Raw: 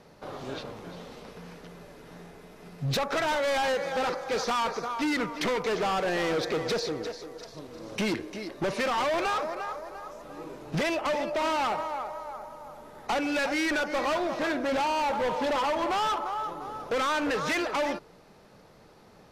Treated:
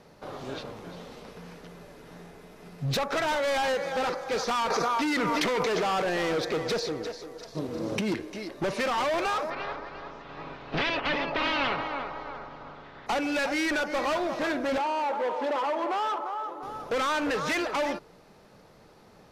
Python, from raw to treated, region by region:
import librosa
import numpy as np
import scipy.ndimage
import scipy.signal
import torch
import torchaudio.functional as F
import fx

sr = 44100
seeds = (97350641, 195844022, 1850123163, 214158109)

y = fx.chain(x, sr, fx.low_shelf(hz=130.0, db=-7.5),
    fx.env_flatten(amount_pct=100), at=(4.7, 6.02))
y = fx.chain(y, sr, fx.highpass(hz=130.0, slope=6),
    fx.low_shelf(hz=490.0, db=11.0),
    fx.over_compress(threshold_db=-26.0, ratio=-1.0), at=(7.55, 8.12))
y = fx.spec_clip(y, sr, under_db=17, at=(9.49, 13.06), fade=0.02)
y = fx.lowpass(y, sr, hz=4000.0, slope=24, at=(9.49, 13.06), fade=0.02)
y = fx.comb(y, sr, ms=7.2, depth=0.34, at=(9.49, 13.06), fade=0.02)
y = fx.chain(y, sr, fx.highpass(hz=280.0, slope=24),
    fx.high_shelf(hz=2900.0, db=-11.0), at=(14.78, 16.63))